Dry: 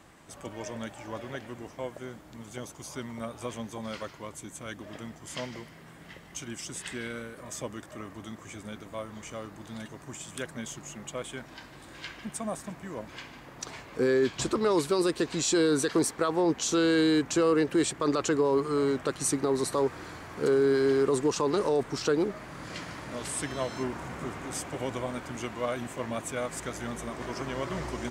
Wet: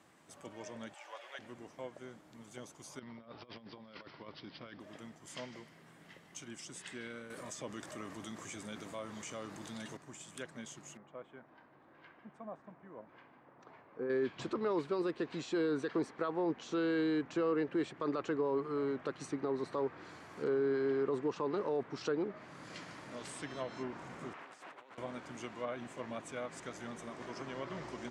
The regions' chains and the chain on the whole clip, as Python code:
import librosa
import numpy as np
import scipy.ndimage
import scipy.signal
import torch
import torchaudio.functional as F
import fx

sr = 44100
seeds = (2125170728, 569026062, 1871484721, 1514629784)

y = fx.chain(x, sr, fx.highpass(hz=570.0, slope=24),
    fx.peak_eq(hz=2800.0, db=6.0, octaves=1.1), at=(0.94, 1.39))
y = fx.chain(y, sr, fx.lowpass(hz=6800.0, slope=12),
    fx.over_compress(threshold_db=-41.0, ratio=-0.5),
    fx.resample_bad(factor=4, down='none', up='filtered'), at=(2.99, 4.8))
y = fx.chain(y, sr, fx.high_shelf(hz=5400.0, db=10.5),
    fx.env_flatten(amount_pct=50), at=(7.3, 9.97))
y = fx.chain(y, sr, fx.lowpass(hz=1200.0, slope=12),
    fx.low_shelf(hz=420.0, db=-7.5), at=(10.97, 14.1))
y = fx.chain(y, sr, fx.over_compress(threshold_db=-40.0, ratio=-1.0),
    fx.bandpass_q(hz=1400.0, q=0.79),
    fx.doppler_dist(depth_ms=0.41), at=(24.33, 24.98))
y = scipy.signal.sosfilt(scipy.signal.butter(2, 130.0, 'highpass', fs=sr, output='sos'), y)
y = fx.env_lowpass_down(y, sr, base_hz=2600.0, full_db=-25.5)
y = F.gain(torch.from_numpy(y), -8.5).numpy()